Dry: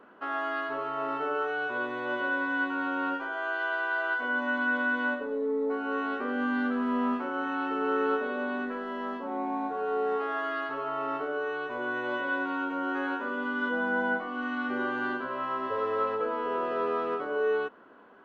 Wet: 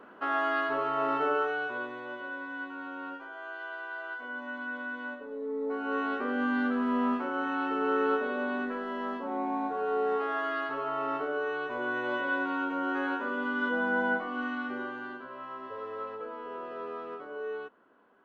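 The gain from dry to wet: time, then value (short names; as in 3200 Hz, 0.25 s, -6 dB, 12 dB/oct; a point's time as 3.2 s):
1.3 s +3 dB
2.18 s -9.5 dB
5.16 s -9.5 dB
5.95 s 0 dB
14.4 s 0 dB
15.07 s -9.5 dB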